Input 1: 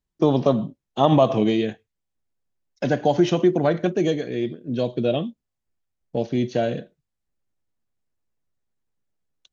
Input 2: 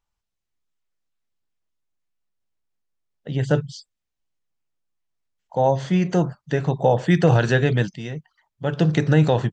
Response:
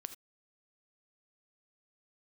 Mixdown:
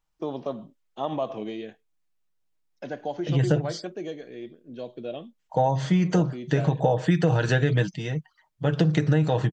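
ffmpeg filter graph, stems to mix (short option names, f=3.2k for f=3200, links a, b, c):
-filter_complex "[0:a]highpass=f=360:p=1,highshelf=f=3.7k:g=-7,volume=-10dB[a];[1:a]aecho=1:1:6.4:0.48,acompressor=threshold=-18dB:ratio=6,volume=0.5dB[b];[a][b]amix=inputs=2:normalize=0"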